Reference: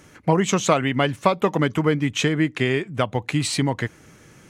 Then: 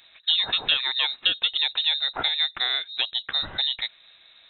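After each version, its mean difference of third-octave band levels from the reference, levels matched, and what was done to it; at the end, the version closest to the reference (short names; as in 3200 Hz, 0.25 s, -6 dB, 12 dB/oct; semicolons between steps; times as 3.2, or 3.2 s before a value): 16.0 dB: inverted band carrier 3900 Hz; gain -4.5 dB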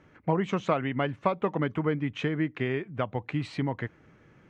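4.0 dB: LPF 2300 Hz 12 dB/oct; gain -7.5 dB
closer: second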